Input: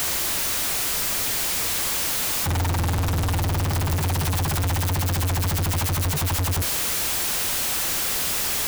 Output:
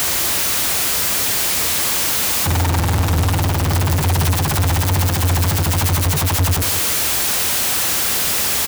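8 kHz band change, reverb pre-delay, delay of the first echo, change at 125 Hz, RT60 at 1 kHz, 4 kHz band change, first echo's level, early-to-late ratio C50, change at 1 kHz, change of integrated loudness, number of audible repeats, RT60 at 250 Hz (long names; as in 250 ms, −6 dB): +6.5 dB, no reverb audible, 173 ms, +6.5 dB, no reverb audible, +6.5 dB, −10.5 dB, no reverb audible, +6.5 dB, +6.5 dB, 1, no reverb audible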